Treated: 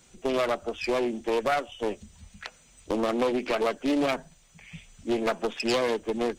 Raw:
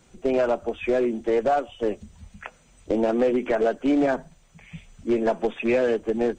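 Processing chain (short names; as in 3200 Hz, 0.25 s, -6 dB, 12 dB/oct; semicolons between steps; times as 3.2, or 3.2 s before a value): self-modulated delay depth 0.24 ms; high shelf 2200 Hz +10 dB; gain -4.5 dB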